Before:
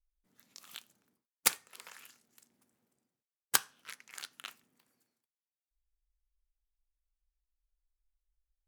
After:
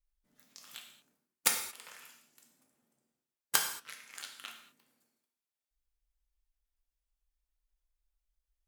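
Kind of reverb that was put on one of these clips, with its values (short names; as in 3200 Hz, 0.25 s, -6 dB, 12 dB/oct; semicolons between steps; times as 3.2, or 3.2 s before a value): non-linear reverb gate 0.25 s falling, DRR 1.5 dB; gain -1.5 dB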